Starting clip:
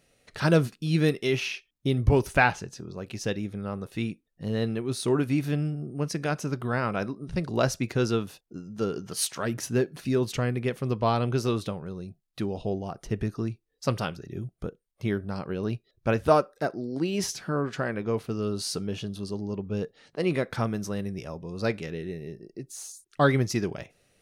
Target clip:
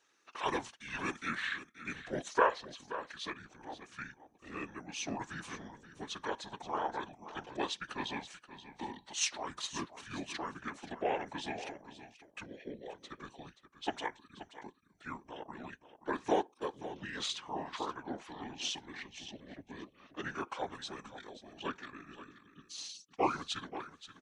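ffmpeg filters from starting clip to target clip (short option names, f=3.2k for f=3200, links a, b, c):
-filter_complex "[0:a]highpass=840,asetrate=28595,aresample=44100,atempo=1.54221,afftfilt=real='hypot(re,im)*cos(2*PI*random(0))':imag='hypot(re,im)*sin(2*PI*random(1))':win_size=512:overlap=0.75,asplit=2[a][b];[b]aecho=0:1:528:0.211[c];[a][c]amix=inputs=2:normalize=0,volume=2.5dB"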